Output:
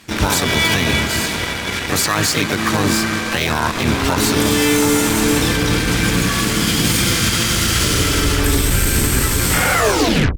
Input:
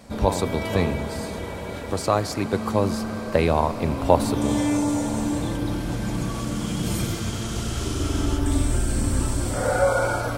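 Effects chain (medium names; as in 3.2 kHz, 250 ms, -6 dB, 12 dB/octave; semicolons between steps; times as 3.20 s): tape stop on the ending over 0.65 s; FFT filter 310 Hz 0 dB, 580 Hz -7 dB, 1.7 kHz +12 dB, 9 kHz +7 dB, 14 kHz -1 dB; peak limiter -15 dBFS, peak gain reduction 11 dB; Chebyshev shaper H 5 -17 dB, 7 -14 dB, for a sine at -15 dBFS; harmony voices +7 st -3 dB; trim +6.5 dB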